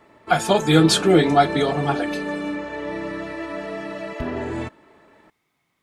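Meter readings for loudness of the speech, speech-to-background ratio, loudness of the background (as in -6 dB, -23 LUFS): -18.5 LUFS, 10.0 dB, -28.5 LUFS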